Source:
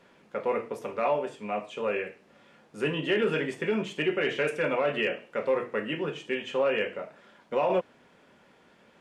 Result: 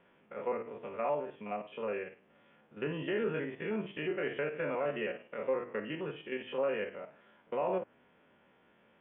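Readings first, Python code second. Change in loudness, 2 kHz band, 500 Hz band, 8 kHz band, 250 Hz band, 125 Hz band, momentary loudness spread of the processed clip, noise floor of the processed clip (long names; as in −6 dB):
−7.0 dB, −9.0 dB, −6.5 dB, can't be measured, −6.5 dB, −6.0 dB, 8 LU, −67 dBFS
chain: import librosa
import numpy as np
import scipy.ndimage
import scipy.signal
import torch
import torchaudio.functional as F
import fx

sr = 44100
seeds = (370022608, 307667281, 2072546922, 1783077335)

y = fx.spec_steps(x, sr, hold_ms=50)
y = scipy.signal.sosfilt(scipy.signal.butter(16, 3400.0, 'lowpass', fs=sr, output='sos'), y)
y = fx.env_lowpass_down(y, sr, base_hz=2100.0, full_db=-26.5)
y = y * librosa.db_to_amplitude(-5.5)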